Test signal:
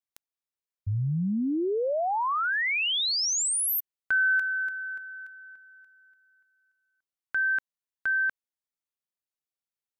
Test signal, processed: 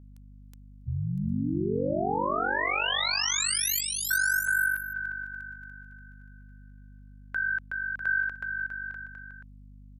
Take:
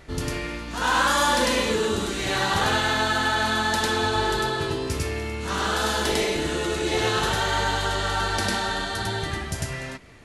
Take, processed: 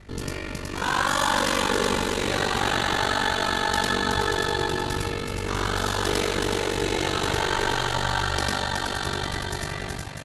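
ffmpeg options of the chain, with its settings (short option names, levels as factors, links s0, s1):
-af "aecho=1:1:370|647.5|855.6|1012|1129:0.631|0.398|0.251|0.158|0.1,aeval=exprs='val(0)*sin(2*PI*24*n/s)':c=same,aeval=exprs='val(0)+0.00398*(sin(2*PI*50*n/s)+sin(2*PI*2*50*n/s)/2+sin(2*PI*3*50*n/s)/3+sin(2*PI*4*50*n/s)/4+sin(2*PI*5*50*n/s)/5)':c=same"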